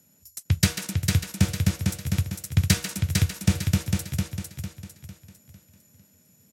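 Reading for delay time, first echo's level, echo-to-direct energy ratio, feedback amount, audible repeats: 452 ms, −4.0 dB, −3.5 dB, 39%, 4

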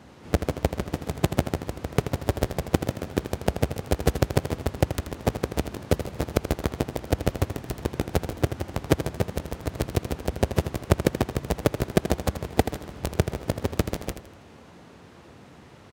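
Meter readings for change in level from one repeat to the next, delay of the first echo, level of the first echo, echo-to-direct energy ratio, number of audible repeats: −10.0 dB, 81 ms, −10.0 dB, −9.5 dB, 3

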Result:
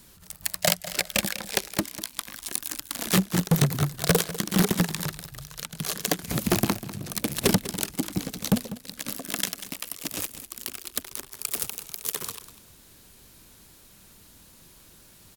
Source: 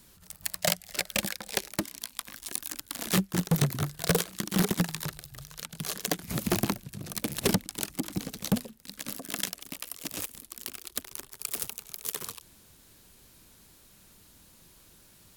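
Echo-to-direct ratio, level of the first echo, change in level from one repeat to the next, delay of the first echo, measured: −14.5 dB, −14.5 dB, −14.5 dB, 197 ms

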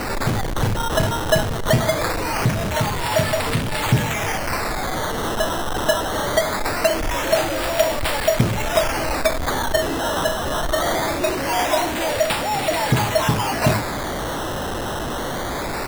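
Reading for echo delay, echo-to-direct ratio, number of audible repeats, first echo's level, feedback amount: 584 ms, −21.5 dB, 1, −22.0 dB, 27%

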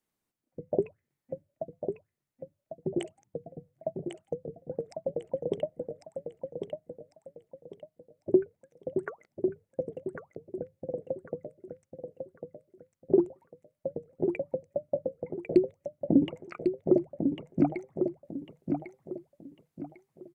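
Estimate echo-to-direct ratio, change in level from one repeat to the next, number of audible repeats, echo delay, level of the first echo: −5.5 dB, −10.0 dB, 3, 1,099 ms, −6.0 dB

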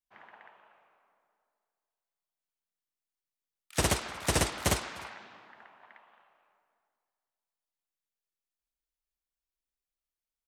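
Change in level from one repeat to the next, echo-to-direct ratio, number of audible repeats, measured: repeats not evenly spaced, −23.5 dB, 1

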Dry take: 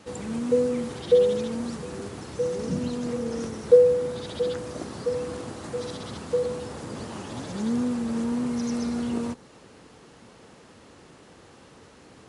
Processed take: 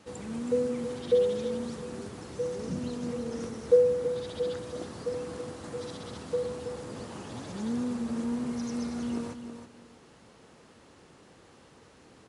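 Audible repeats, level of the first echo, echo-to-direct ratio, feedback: 2, −9.0 dB, −9.0 dB, 20%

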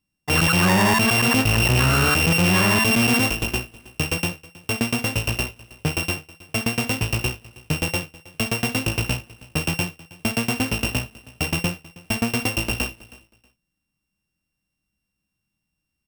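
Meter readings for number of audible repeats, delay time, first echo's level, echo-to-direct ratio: 2, 319 ms, −21.0 dB, −21.0 dB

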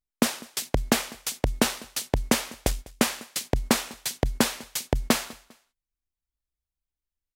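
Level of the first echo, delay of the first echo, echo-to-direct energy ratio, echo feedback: −22.0 dB, 200 ms, −21.5 dB, 32%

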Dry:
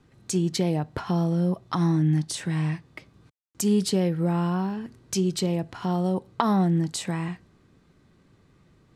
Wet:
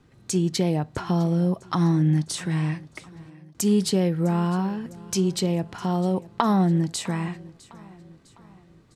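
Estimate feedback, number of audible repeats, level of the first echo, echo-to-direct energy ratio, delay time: 49%, 3, −21.0 dB, −20.0 dB, 655 ms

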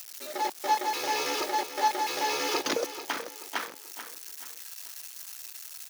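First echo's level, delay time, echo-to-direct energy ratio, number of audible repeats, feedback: −11.5 dB, 435 ms, −11.0 dB, 3, 39%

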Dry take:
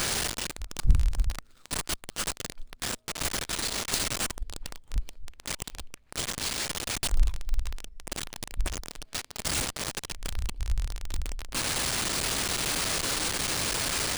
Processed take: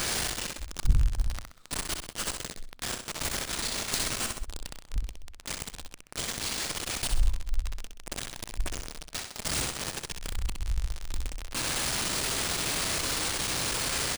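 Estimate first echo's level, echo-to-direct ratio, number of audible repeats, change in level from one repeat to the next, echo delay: −6.0 dB, −5.5 dB, 3, −8.0 dB, 64 ms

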